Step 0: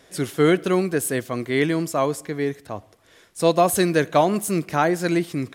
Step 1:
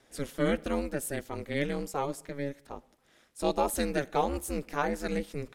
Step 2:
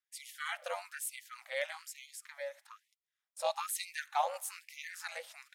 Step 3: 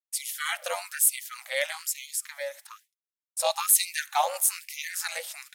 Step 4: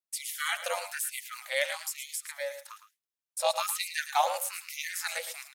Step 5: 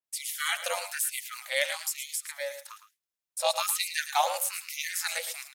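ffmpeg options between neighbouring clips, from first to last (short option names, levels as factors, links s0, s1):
-af "aeval=exprs='val(0)*sin(2*PI*140*n/s)':c=same,volume=0.422"
-af "agate=range=0.0501:threshold=0.00141:ratio=16:detection=peak,afftfilt=real='re*gte(b*sr/1024,490*pow(2000/490,0.5+0.5*sin(2*PI*1.1*pts/sr)))':imag='im*gte(b*sr/1024,490*pow(2000/490,0.5+0.5*sin(2*PI*1.1*pts/sr)))':win_size=1024:overlap=0.75,volume=0.841"
-filter_complex "[0:a]agate=range=0.0224:threshold=0.00141:ratio=3:detection=peak,acrossover=split=1100[s0][s1];[s1]crystalizer=i=2.5:c=0[s2];[s0][s2]amix=inputs=2:normalize=0,volume=2.11"
-filter_complex "[0:a]aecho=1:1:110:0.266,acrossover=split=4300[s0][s1];[s1]acompressor=threshold=0.0251:ratio=6[s2];[s0][s2]amix=inputs=2:normalize=0,volume=0.891"
-af "adynamicequalizer=threshold=0.00794:dfrequency=2300:dqfactor=0.7:tfrequency=2300:tqfactor=0.7:attack=5:release=100:ratio=0.375:range=2:mode=boostabove:tftype=highshelf"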